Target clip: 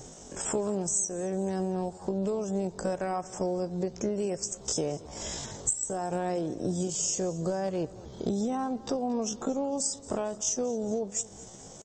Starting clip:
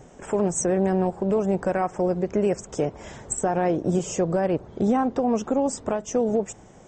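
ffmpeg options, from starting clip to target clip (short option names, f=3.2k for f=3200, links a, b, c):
-filter_complex "[0:a]highshelf=f=3.2k:t=q:w=1.5:g=11,acompressor=threshold=-27dB:ratio=8,atempo=0.58,asplit=2[a][b];[b]aecho=0:1:225|450|675|900:0.1|0.047|0.0221|0.0104[c];[a][c]amix=inputs=2:normalize=0"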